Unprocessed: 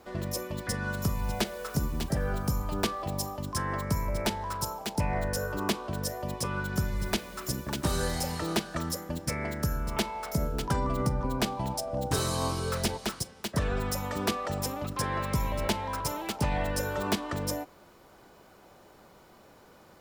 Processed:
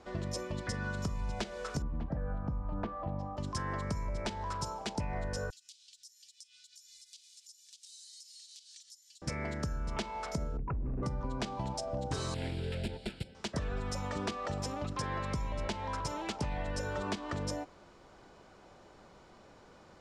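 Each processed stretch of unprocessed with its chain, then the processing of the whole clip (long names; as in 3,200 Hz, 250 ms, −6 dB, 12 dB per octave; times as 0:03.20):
0:01.82–0:03.37: low-pass filter 1,200 Hz + notch filter 390 Hz, Q 5.6
0:05.50–0:09.22: inverse Chebyshev high-pass filter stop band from 1,100 Hz, stop band 60 dB + high-shelf EQ 5,800 Hz +9 dB + downward compressor, threshold −45 dBFS
0:10.57–0:11.03: spectral envelope exaggerated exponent 3 + hard clipping −28.5 dBFS + linear-phase brick-wall low-pass 2,800 Hz
0:12.34–0:13.35: phase distortion by the signal itself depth 0.51 ms + parametric band 1,900 Hz −6 dB 0.2 octaves + phaser with its sweep stopped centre 2,700 Hz, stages 4
whole clip: low-pass filter 7,600 Hz 24 dB per octave; low-shelf EQ 65 Hz +5.5 dB; downward compressor, threshold −30 dBFS; level −2 dB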